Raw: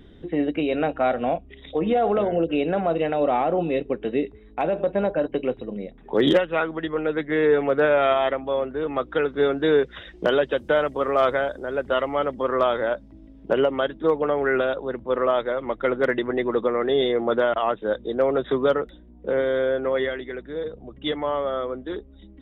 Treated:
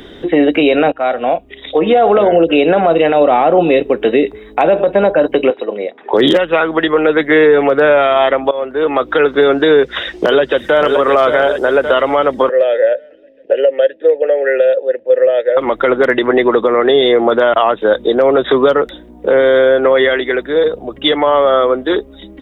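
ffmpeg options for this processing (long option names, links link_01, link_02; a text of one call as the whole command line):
ffmpeg -i in.wav -filter_complex "[0:a]asettb=1/sr,asplit=3[link_01][link_02][link_03];[link_01]atrim=end=5.504[link_04];[link_02]atrim=start=5.5:end=6.14,asetpts=PTS-STARTPTS,afade=type=in:duration=0.004:curve=qsin,afade=type=out:start_time=0.636:duration=0.004:curve=qsin,highpass=410,lowpass=3200[link_05];[link_03]atrim=start=6.136[link_06];[link_04][link_05]acrossfade=duration=0.004:curve1=hsin:curve2=qsin[link_07];[link_07][link_06]acrossfade=duration=0.004:curve1=qsin:curve2=hsin,asplit=2[link_08][link_09];[link_09]afade=type=in:start_time=9.74:duration=0.01,afade=type=out:start_time=10.86:duration=0.01,aecho=0:1:570|1140|1710|2280|2850:0.316228|0.142302|0.0640361|0.0288163|0.0129673[link_10];[link_08][link_10]amix=inputs=2:normalize=0,asettb=1/sr,asplit=3[link_11][link_12][link_13];[link_11]atrim=end=12.494[link_14];[link_12]atrim=start=12.49:end=15.57,asetpts=PTS-STARTPTS,afade=type=in:duration=0.004:curve=qsin,afade=type=out:start_time=3.076:duration=0.004:curve=qsin,asplit=3[link_15][link_16][link_17];[link_15]bandpass=frequency=530:width_type=q:width=8,volume=0dB[link_18];[link_16]bandpass=frequency=1840:width_type=q:width=8,volume=-6dB[link_19];[link_17]bandpass=frequency=2480:width_type=q:width=8,volume=-9dB[link_20];[link_18][link_19][link_20]amix=inputs=3:normalize=0[link_21];[link_13]atrim=start=15.566[link_22];[link_14][link_21]acrossfade=duration=0.004:curve1=hsin:curve2=qsin[link_23];[link_23][link_22]acrossfade=duration=0.004:curve1=qsin:curve2=hsin,asplit=3[link_24][link_25][link_26];[link_24]atrim=end=0.92,asetpts=PTS-STARTPTS,afade=type=out:start_time=0.916:duration=0.004:curve=hsin:silence=0.158489[link_27];[link_25]atrim=start=0.92:end=8.51,asetpts=PTS-STARTPTS,afade=type=in:duration=2.49:curve=qsin:silence=0.158489,afade=type=out:start_time=7.586:duration=0.004:curve=hsin:silence=0.112202[link_28];[link_26]atrim=start=8.51,asetpts=PTS-STARTPTS,afade=type=in:duration=0.63:silence=0.112202[link_29];[link_27][link_28][link_29]concat=n=3:v=0:a=1,bass=frequency=250:gain=-14,treble=frequency=4000:gain=3,acrossover=split=240[link_30][link_31];[link_31]acompressor=threshold=-26dB:ratio=6[link_32];[link_30][link_32]amix=inputs=2:normalize=0,alimiter=level_in=20.5dB:limit=-1dB:release=50:level=0:latency=1,volume=-1dB" out.wav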